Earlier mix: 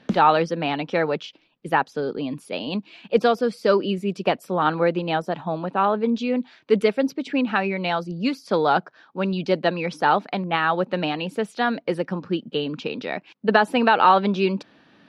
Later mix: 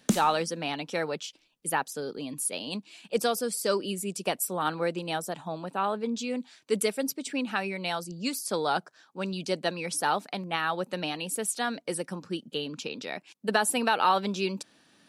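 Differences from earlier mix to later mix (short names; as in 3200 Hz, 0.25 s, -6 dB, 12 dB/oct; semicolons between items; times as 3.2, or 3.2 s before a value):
speech -9.5 dB; master: remove air absorption 290 m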